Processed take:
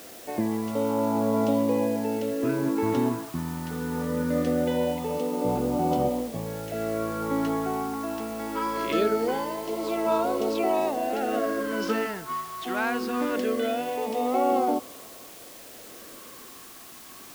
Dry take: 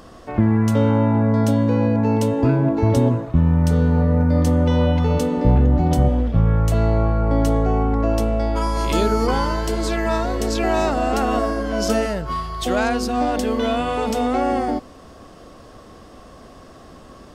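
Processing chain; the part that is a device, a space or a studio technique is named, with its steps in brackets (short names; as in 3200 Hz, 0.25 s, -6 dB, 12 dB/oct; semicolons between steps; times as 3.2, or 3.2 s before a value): shortwave radio (BPF 310–2700 Hz; tremolo 0.68 Hz, depth 43%; LFO notch sine 0.22 Hz 530–1800 Hz; white noise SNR 19 dB)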